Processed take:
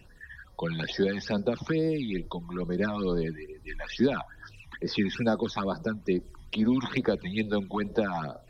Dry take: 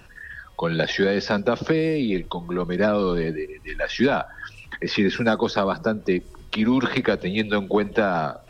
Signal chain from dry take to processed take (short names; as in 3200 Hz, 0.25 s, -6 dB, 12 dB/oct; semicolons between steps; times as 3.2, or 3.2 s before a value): phaser stages 12, 2.3 Hz, lowest notch 440–2800 Hz; gain -5 dB